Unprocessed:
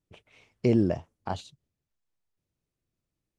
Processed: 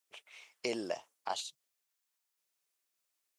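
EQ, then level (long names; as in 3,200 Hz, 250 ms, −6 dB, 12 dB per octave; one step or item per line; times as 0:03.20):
high-pass filter 930 Hz 12 dB per octave
high-shelf EQ 5,500 Hz +8.5 dB
dynamic equaliser 1,600 Hz, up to −6 dB, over −56 dBFS, Q 1
+3.5 dB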